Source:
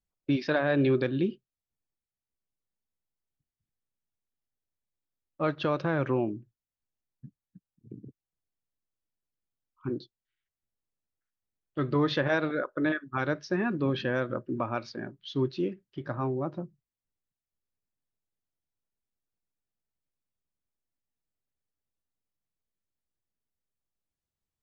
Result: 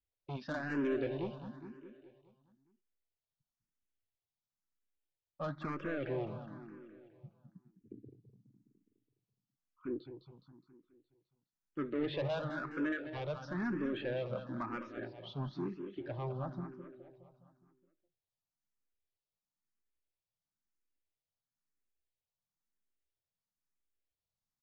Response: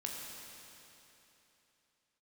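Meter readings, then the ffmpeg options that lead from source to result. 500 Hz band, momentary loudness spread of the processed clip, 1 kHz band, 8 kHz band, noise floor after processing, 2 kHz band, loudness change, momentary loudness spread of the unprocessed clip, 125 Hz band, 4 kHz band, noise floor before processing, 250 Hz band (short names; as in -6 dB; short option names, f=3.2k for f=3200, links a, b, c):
-9.0 dB, 19 LU, -9.5 dB, n/a, under -85 dBFS, -10.0 dB, -9.5 dB, 14 LU, -9.0 dB, -10.5 dB, under -85 dBFS, -8.5 dB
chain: -filter_complex "[0:a]acrossover=split=3100[a][b];[b]acompressor=threshold=-59dB:ratio=4:attack=1:release=60[c];[a][c]amix=inputs=2:normalize=0,aresample=16000,asoftclip=type=tanh:threshold=-26dB,aresample=44100,aecho=1:1:208|416|624|832|1040|1248|1456:0.355|0.199|0.111|0.0623|0.0349|0.0195|0.0109,asplit=2[d][e];[e]afreqshift=1[f];[d][f]amix=inputs=2:normalize=1,volume=-3dB"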